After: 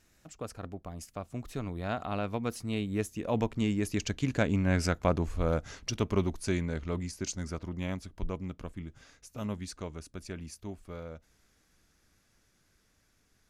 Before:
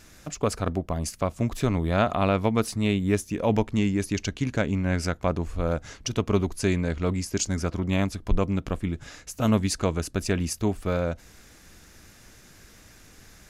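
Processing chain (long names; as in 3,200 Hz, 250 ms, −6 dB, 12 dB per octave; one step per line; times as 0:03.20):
source passing by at 0:04.93, 16 m/s, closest 17 metres
level −1.5 dB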